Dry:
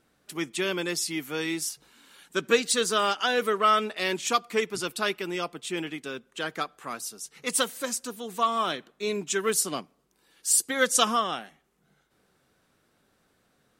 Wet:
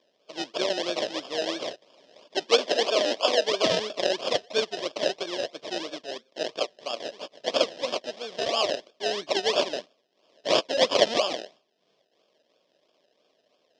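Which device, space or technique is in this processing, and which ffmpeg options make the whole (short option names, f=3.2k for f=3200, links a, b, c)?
circuit-bent sampling toy: -filter_complex "[0:a]acrusher=samples=31:mix=1:aa=0.000001:lfo=1:lforange=18.6:lforate=3,highpass=490,equalizer=f=600:t=q:w=4:g=8,equalizer=f=850:t=q:w=4:g=-9,equalizer=f=1.4k:t=q:w=4:g=-10,equalizer=f=2.1k:t=q:w=4:g=-4,equalizer=f=3.3k:t=q:w=4:g=8,equalizer=f=5.2k:t=q:w=4:g=8,lowpass=f=5.9k:w=0.5412,lowpass=f=5.9k:w=1.3066,asettb=1/sr,asplit=3[a][b][c];[a]atrim=end=2.434[d];[b]atrim=start=2.43:end=3.48,asetpts=PTS-STARTPTS,afade=t=in:d=0.004:c=qsin,afade=t=out:st=1.046:d=0.004:c=qsin,highpass=f=200:w=0.5412,highpass=f=200:w=1.3066[e];[c]atrim=start=3.476[f];[d][e]acrossfade=d=0.004:c1=hsin:c2=qsin[g];[g][f]acrossfade=d=0.004:c1=qsin:c2=hsin,volume=3.5dB"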